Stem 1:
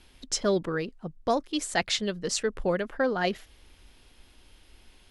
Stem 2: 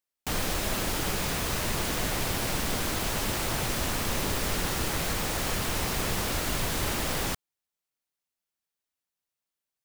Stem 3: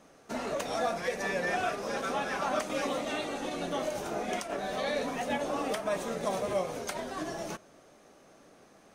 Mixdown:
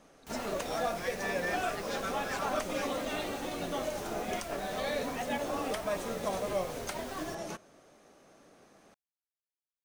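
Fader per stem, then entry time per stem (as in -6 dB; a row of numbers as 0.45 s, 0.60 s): -18.5 dB, -18.0 dB, -2.0 dB; 0.00 s, 0.00 s, 0.00 s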